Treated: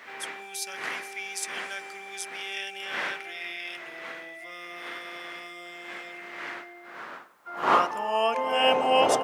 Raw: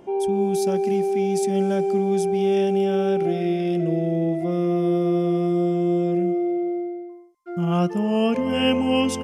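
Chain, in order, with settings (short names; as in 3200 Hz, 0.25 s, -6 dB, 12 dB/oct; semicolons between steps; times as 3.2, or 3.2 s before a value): wind noise 250 Hz -20 dBFS; high-pass sweep 1900 Hz -> 690 Hz, 6.39–8.79; requantised 12-bit, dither triangular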